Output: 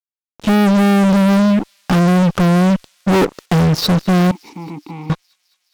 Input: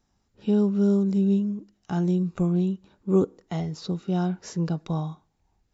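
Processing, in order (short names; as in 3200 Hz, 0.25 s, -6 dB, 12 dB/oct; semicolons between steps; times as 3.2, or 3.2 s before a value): steep low-pass 6100 Hz; fuzz box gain 38 dB, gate -46 dBFS; 4.31–5.1 vowel filter u; thin delay 0.209 s, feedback 73%, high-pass 4400 Hz, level -21 dB; gain +2.5 dB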